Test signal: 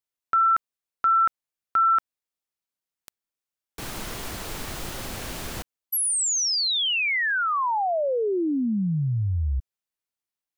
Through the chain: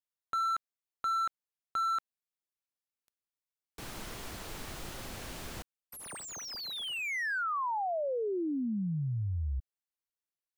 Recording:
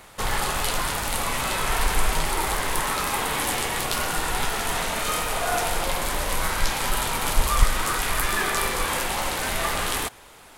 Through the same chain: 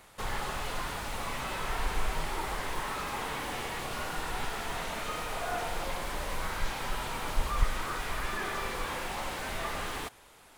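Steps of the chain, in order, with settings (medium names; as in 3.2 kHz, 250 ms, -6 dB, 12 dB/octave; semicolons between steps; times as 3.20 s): slew-rate limiter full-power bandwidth 120 Hz; trim -8.5 dB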